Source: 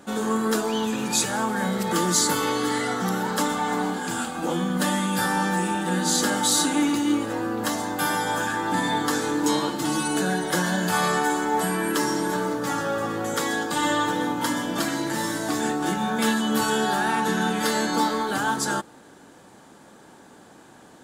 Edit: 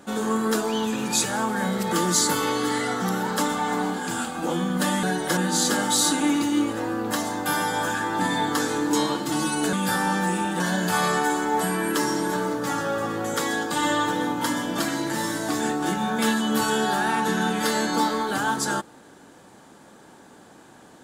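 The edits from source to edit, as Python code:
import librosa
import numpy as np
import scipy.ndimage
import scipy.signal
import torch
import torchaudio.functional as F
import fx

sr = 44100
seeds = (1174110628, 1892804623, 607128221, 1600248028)

y = fx.edit(x, sr, fx.swap(start_s=5.03, length_s=0.87, other_s=10.26, other_length_s=0.34), tone=tone)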